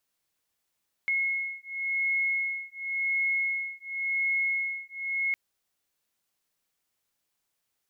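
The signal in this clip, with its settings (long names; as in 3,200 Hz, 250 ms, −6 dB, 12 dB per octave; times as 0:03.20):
two tones that beat 2,170 Hz, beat 0.92 Hz, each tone −29.5 dBFS 4.26 s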